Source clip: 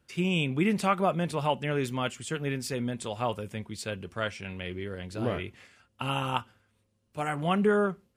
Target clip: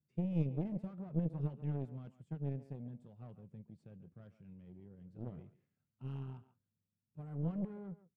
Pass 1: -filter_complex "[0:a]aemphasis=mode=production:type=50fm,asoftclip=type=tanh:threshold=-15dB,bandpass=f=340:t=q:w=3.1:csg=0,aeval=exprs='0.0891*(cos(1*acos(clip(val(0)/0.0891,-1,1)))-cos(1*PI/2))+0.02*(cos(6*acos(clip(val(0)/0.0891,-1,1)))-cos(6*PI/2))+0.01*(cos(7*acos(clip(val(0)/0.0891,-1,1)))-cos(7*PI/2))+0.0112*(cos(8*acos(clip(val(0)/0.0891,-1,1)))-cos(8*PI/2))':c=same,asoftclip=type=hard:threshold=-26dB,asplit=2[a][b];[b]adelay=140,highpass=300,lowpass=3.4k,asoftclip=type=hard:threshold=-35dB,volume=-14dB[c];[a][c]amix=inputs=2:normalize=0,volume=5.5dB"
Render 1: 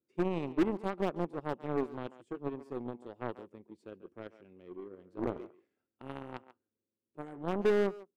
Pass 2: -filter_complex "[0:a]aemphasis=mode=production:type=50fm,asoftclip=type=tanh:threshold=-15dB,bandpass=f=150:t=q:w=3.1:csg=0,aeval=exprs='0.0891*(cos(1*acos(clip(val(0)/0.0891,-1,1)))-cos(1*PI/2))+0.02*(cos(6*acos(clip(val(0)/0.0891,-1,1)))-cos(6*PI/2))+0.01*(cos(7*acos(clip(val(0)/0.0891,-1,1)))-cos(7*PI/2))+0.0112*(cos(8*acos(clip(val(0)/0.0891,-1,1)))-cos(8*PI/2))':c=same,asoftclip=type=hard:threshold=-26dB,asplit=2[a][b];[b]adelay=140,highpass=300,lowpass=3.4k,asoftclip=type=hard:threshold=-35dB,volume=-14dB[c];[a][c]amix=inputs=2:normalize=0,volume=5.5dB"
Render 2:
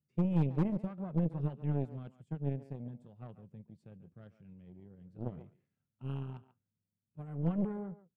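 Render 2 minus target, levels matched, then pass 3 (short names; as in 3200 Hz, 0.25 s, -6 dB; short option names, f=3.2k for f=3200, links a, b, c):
soft clip: distortion -13 dB
-filter_complex "[0:a]aemphasis=mode=production:type=50fm,asoftclip=type=tanh:threshold=-26dB,bandpass=f=150:t=q:w=3.1:csg=0,aeval=exprs='0.0891*(cos(1*acos(clip(val(0)/0.0891,-1,1)))-cos(1*PI/2))+0.02*(cos(6*acos(clip(val(0)/0.0891,-1,1)))-cos(6*PI/2))+0.01*(cos(7*acos(clip(val(0)/0.0891,-1,1)))-cos(7*PI/2))+0.0112*(cos(8*acos(clip(val(0)/0.0891,-1,1)))-cos(8*PI/2))':c=same,asoftclip=type=hard:threshold=-26dB,asplit=2[a][b];[b]adelay=140,highpass=300,lowpass=3.4k,asoftclip=type=hard:threshold=-35dB,volume=-14dB[c];[a][c]amix=inputs=2:normalize=0,volume=5.5dB"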